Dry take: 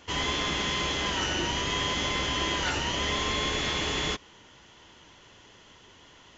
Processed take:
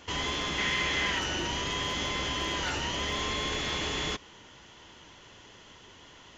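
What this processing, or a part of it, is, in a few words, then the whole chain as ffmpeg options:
clipper into limiter: -filter_complex "[0:a]asoftclip=type=hard:threshold=0.1,alimiter=level_in=1.12:limit=0.0631:level=0:latency=1:release=38,volume=0.891,asettb=1/sr,asplit=3[s0][s1][s2];[s0]atrim=end=0.584[s3];[s1]atrim=start=0.58:end=1.19,asetpts=PTS-STARTPTS,afade=t=in:d=0.004:c=qsin,afade=t=out:st=0.606:d=0.004:c=qsin,equalizer=f=2000:t=o:w=0.72:g=8.5[s4];[s2]atrim=start=1.186[s5];[s3][s4]acrossfade=d=0.004:c1=hsin:c2=qsin[s6];[s6][s5]acrossfade=d=0.004:c1=qsin:c2=hsin,volume=1.19"

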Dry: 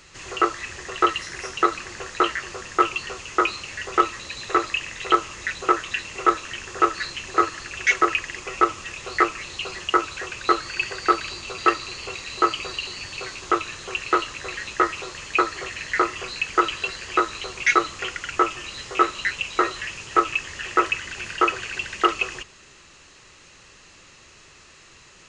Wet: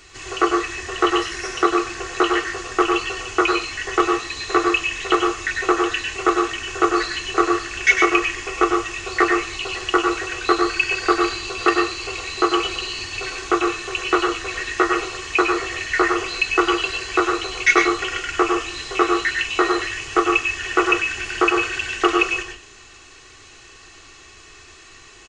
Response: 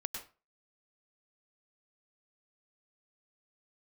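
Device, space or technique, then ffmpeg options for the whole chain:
microphone above a desk: -filter_complex "[0:a]aecho=1:1:2.7:0.64[s0];[1:a]atrim=start_sample=2205[s1];[s0][s1]afir=irnorm=-1:irlink=0,volume=1.41"

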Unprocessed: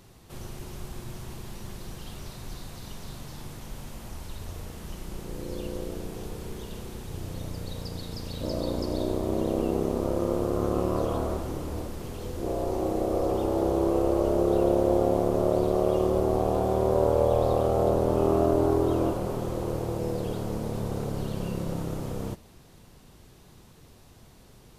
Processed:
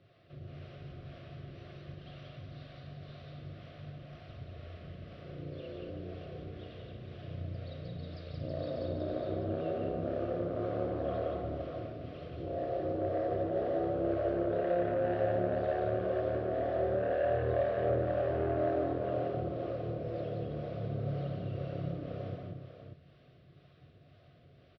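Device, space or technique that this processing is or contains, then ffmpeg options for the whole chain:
guitar amplifier with harmonic tremolo: -filter_complex "[0:a]superequalizer=8b=2:9b=0.282:15b=0.316,acrossover=split=430[s0][s1];[s0]aeval=exprs='val(0)*(1-0.7/2+0.7/2*cos(2*PI*2*n/s))':c=same[s2];[s1]aeval=exprs='val(0)*(1-0.7/2-0.7/2*cos(2*PI*2*n/s))':c=same[s3];[s2][s3]amix=inputs=2:normalize=0,asoftclip=type=tanh:threshold=0.0944,highpass=93,equalizer=f=94:t=q:w=4:g=7,equalizer=f=140:t=q:w=4:g=8,equalizer=f=210:t=q:w=4:g=-8,equalizer=f=1000:t=q:w=4:g=-6,lowpass=f=3600:w=0.5412,lowpass=f=3600:w=1.3066,aecho=1:1:154|173|177|233|325|592:0.2|0.2|0.708|0.299|0.2|0.398,volume=0.501"

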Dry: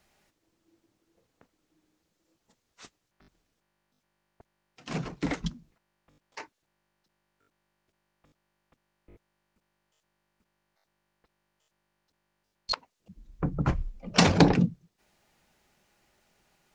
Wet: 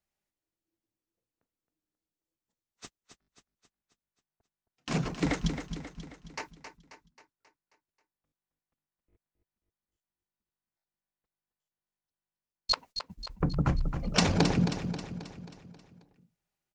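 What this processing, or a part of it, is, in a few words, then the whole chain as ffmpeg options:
ASMR close-microphone chain: -af "agate=range=0.0562:threshold=0.00355:ratio=16:detection=peak,lowshelf=f=150:g=4,acompressor=threshold=0.0501:ratio=4,highshelf=f=7500:g=8,aecho=1:1:268|536|804|1072|1340|1608:0.355|0.185|0.0959|0.0499|0.0259|0.0135,volume=1.33"

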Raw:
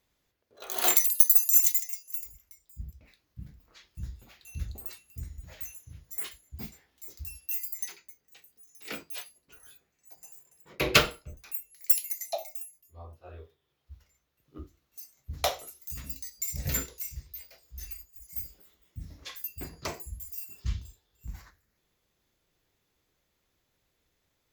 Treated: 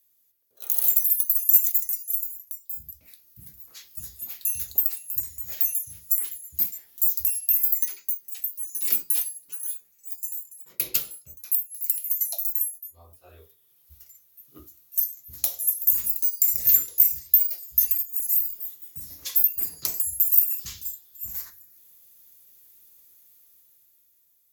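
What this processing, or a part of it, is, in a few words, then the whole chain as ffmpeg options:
FM broadcast chain: -filter_complex "[0:a]highpass=74,dynaudnorm=f=290:g=9:m=3.76,acrossover=split=350|3300[s0][s1][s2];[s0]acompressor=threshold=0.0126:ratio=4[s3];[s1]acompressor=threshold=0.0126:ratio=4[s4];[s2]acompressor=threshold=0.0224:ratio=4[s5];[s3][s4][s5]amix=inputs=3:normalize=0,aemphasis=mode=production:type=50fm,alimiter=limit=0.794:level=0:latency=1:release=333,asoftclip=type=hard:threshold=0.596,lowpass=f=15000:w=0.5412,lowpass=f=15000:w=1.3066,aemphasis=mode=production:type=50fm,volume=0.316"

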